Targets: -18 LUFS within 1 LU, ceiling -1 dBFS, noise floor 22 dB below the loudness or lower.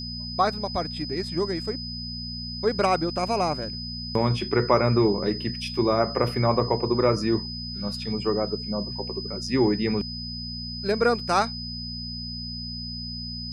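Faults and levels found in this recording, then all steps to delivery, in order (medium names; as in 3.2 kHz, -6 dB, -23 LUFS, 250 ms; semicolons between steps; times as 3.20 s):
hum 60 Hz; highest harmonic 240 Hz; hum level -34 dBFS; steady tone 5 kHz; tone level -34 dBFS; loudness -26.0 LUFS; peak level -5.5 dBFS; loudness target -18.0 LUFS
-> de-hum 60 Hz, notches 4; band-stop 5 kHz, Q 30; trim +8 dB; peak limiter -1 dBFS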